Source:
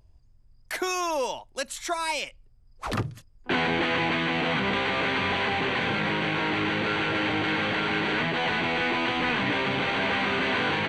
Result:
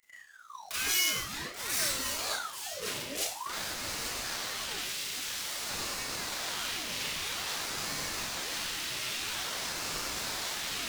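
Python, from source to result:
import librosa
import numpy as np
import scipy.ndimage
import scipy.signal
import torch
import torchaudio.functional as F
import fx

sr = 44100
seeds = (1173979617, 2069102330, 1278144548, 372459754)

p1 = fx.tracing_dist(x, sr, depth_ms=0.11)
p2 = fx.comb_fb(p1, sr, f0_hz=170.0, decay_s=0.89, harmonics='all', damping=0.0, mix_pct=90, at=(0.75, 1.28), fade=0.02)
p3 = fx.tube_stage(p2, sr, drive_db=35.0, bias=0.35)
p4 = fx.fixed_phaser(p3, sr, hz=330.0, stages=6)
p5 = fx.fuzz(p4, sr, gain_db=48.0, gate_db=-56.0)
p6 = p4 + F.gain(torch.from_numpy(p5), -7.5).numpy()
p7 = fx.high_shelf(p6, sr, hz=2800.0, db=9.0, at=(4.82, 5.65))
p8 = fx.over_compress(p7, sr, threshold_db=-28.0, ratio=-1.0)
p9 = fx.tone_stack(p8, sr, knobs='5-5-5')
p10 = fx.echo_feedback(p9, sr, ms=834, feedback_pct=39, wet_db=-10.5)
p11 = fx.rev_schroeder(p10, sr, rt60_s=0.52, comb_ms=27, drr_db=-8.0)
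p12 = fx.ring_lfo(p11, sr, carrier_hz=1200.0, swing_pct=70, hz=0.5)
y = F.gain(torch.from_numpy(p12), -3.0).numpy()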